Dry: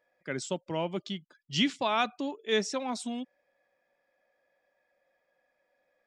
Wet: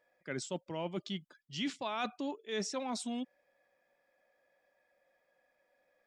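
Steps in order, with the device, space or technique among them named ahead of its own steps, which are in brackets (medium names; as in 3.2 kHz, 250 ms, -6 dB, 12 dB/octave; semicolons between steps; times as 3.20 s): compression on the reversed sound (reverse; compression 5:1, threshold -34 dBFS, peak gain reduction 11.5 dB; reverse)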